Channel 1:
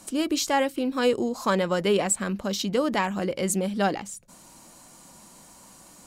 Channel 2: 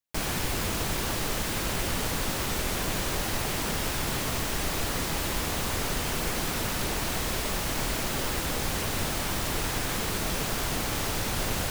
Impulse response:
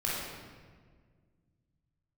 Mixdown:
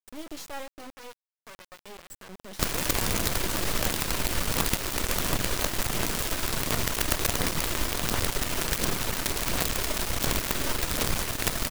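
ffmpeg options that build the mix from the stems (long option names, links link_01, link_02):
-filter_complex "[0:a]volume=-1dB,afade=type=out:start_time=0.58:duration=0.5:silence=0.281838,afade=type=in:start_time=2.01:duration=0.42:silence=0.334965[link_01];[1:a]bandreject=frequency=810:width=12,aphaser=in_gain=1:out_gain=1:delay=3.3:decay=0.28:speed=1.4:type=sinusoidal,adelay=2450,volume=2.5dB[link_02];[link_01][link_02]amix=inputs=2:normalize=0,acrusher=bits=4:dc=4:mix=0:aa=0.000001"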